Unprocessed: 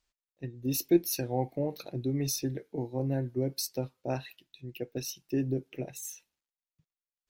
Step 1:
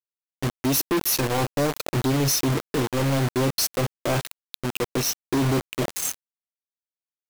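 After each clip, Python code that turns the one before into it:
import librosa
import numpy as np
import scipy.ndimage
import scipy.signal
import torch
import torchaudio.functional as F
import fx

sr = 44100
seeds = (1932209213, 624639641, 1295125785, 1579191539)

y = fx.quant_companded(x, sr, bits=2)
y = y * 10.0 ** (5.0 / 20.0)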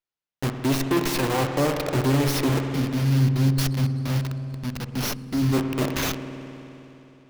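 y = fx.spec_box(x, sr, start_s=2.61, length_s=2.92, low_hz=290.0, high_hz=4200.0, gain_db=-15)
y = fx.rev_spring(y, sr, rt60_s=3.3, pass_ms=(52,), chirp_ms=80, drr_db=3.5)
y = fx.running_max(y, sr, window=5)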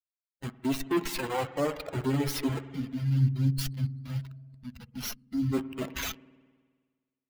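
y = fx.bin_expand(x, sr, power=2.0)
y = y * 10.0 ** (-2.5 / 20.0)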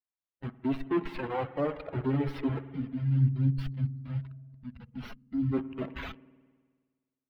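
y = fx.air_absorb(x, sr, metres=460.0)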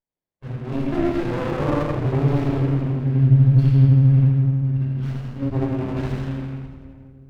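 y = fx.echo_feedback(x, sr, ms=82, feedback_pct=53, wet_db=-4.5)
y = fx.room_shoebox(y, sr, seeds[0], volume_m3=2600.0, walls='mixed', distance_m=5.4)
y = fx.running_max(y, sr, window=33)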